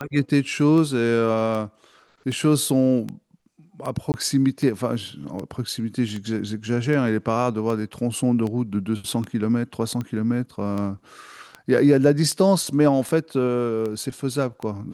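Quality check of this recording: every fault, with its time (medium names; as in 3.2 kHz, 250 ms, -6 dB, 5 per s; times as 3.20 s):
tick 78 rpm -18 dBFS
4.12–4.14 s: dropout 19 ms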